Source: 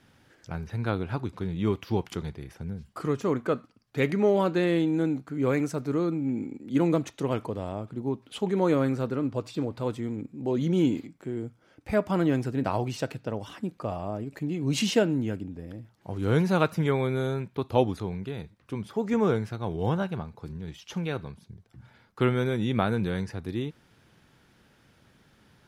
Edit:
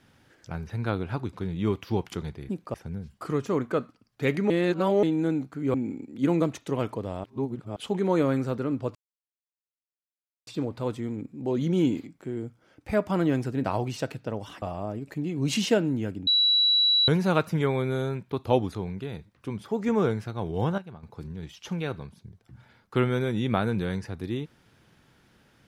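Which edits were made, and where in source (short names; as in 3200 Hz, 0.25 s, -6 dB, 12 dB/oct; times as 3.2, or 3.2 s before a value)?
4.25–4.78 reverse
5.49–6.26 cut
7.76–8.28 reverse
9.47 insert silence 1.52 s
13.62–13.87 move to 2.49
15.52–16.33 bleep 3920 Hz -18 dBFS
20.03–20.28 gain -10.5 dB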